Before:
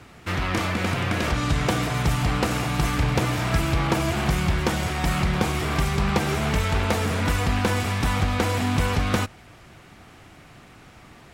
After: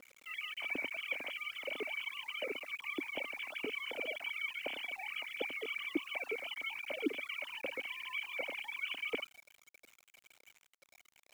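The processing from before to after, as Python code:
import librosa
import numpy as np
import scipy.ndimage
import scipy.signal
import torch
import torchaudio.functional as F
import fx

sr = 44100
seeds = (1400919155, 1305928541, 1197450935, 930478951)

y = fx.sine_speech(x, sr)
y = fx.rider(y, sr, range_db=4, speed_s=0.5)
y = fx.formant_cascade(y, sr, vowel='i')
y = fx.quant_dither(y, sr, seeds[0], bits=10, dither='none')
y = y * librosa.db_to_amplitude(1.0)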